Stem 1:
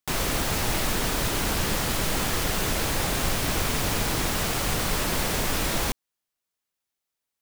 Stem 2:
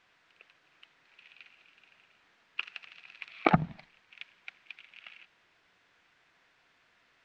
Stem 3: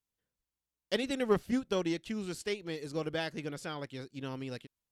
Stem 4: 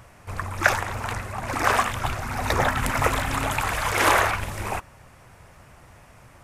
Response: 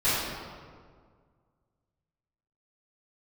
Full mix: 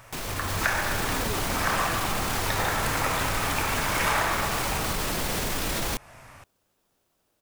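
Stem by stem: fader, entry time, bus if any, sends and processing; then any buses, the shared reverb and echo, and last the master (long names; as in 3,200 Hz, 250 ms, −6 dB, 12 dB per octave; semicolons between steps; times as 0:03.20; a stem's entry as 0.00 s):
−1.0 dB, 0.05 s, no send, brickwall limiter −23 dBFS, peak gain reduction 11 dB; automatic gain control gain up to 10.5 dB
−8.0 dB, 0.50 s, no send, decimation without filtering 21×
−4.0 dB, 0.00 s, no send, background raised ahead of every attack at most 38 dB per second
+1.0 dB, 0.00 s, send −12.5 dB, low-shelf EQ 500 Hz −9.5 dB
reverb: on, RT60 1.9 s, pre-delay 3 ms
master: downward compressor 2 to 1, threshold −29 dBFS, peak gain reduction 10 dB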